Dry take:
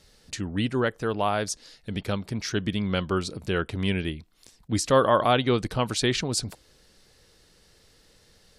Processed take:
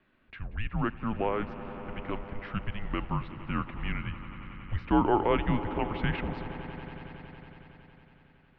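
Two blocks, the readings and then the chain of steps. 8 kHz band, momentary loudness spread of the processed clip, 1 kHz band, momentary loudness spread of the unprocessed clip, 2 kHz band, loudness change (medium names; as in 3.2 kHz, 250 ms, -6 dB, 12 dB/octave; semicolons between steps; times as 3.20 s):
under -40 dB, 18 LU, -4.5 dB, 13 LU, -6.0 dB, -6.0 dB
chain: echo with a slow build-up 92 ms, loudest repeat 5, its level -18 dB; mistuned SSB -220 Hz 170–2800 Hz; trim -4 dB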